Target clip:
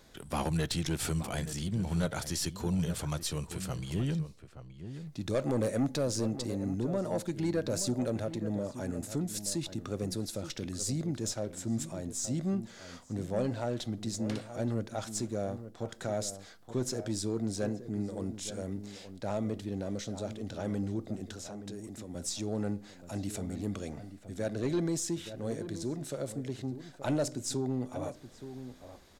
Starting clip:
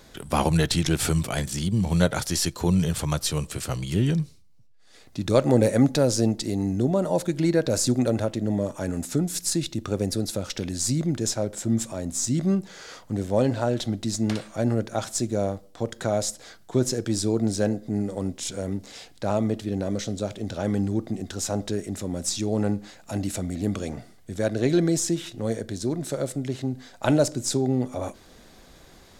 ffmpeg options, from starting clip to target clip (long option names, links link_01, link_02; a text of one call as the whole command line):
ffmpeg -i in.wav -filter_complex "[0:a]asettb=1/sr,asplit=3[link_01][link_02][link_03];[link_01]atrim=end=21.314[link_04];[link_02]atrim=start=21.31:end=22.15,asetpts=PTS-STARTPTS,afade=type=in:duration=0.004:curve=qsin,afade=type=out:start_time=0.836:duration=0.004:curve=qsin,acrossover=split=230|5600[link_05][link_06][link_07];[link_05]acompressor=threshold=-41dB:ratio=4[link_08];[link_06]acompressor=threshold=-37dB:ratio=4[link_09];[link_07]acompressor=threshold=-44dB:ratio=4[link_10];[link_08][link_09][link_10]amix=inputs=3:normalize=0[link_11];[link_03]atrim=start=22.146[link_12];[link_04][link_11]acrossfade=duration=0.004:curve1=hsin:curve2=qsin[link_13];[link_13][link_12]acrossfade=duration=0.004:curve1=qsin:curve2=hsin,asoftclip=type=tanh:threshold=-14.5dB,asplit=2[link_14][link_15];[link_15]adelay=874.6,volume=-11dB,highshelf=frequency=4000:gain=-19.7[link_16];[link_14][link_16]amix=inputs=2:normalize=0,volume=-8dB" out.wav